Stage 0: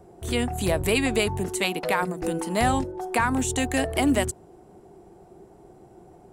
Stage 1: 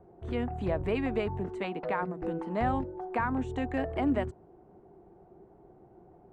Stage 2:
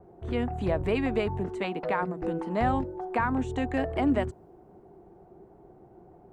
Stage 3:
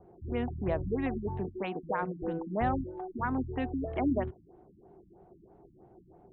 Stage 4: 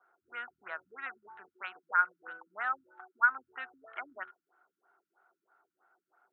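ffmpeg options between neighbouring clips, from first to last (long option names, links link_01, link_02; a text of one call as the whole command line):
ffmpeg -i in.wav -af "lowpass=1600,volume=-6dB" out.wav
ffmpeg -i in.wav -af "adynamicequalizer=threshold=0.00251:dfrequency=3600:dqfactor=0.7:tfrequency=3600:tqfactor=0.7:attack=5:release=100:ratio=0.375:range=2.5:mode=boostabove:tftype=highshelf,volume=3dB" out.wav
ffmpeg -i in.wav -af "afftfilt=real='re*lt(b*sr/1024,300*pow(4300/300,0.5+0.5*sin(2*PI*3.1*pts/sr)))':imag='im*lt(b*sr/1024,300*pow(4300/300,0.5+0.5*sin(2*PI*3.1*pts/sr)))':win_size=1024:overlap=0.75,volume=-3.5dB" out.wav
ffmpeg -i in.wav -af "highpass=frequency=1400:width_type=q:width=14,volume=-4.5dB" out.wav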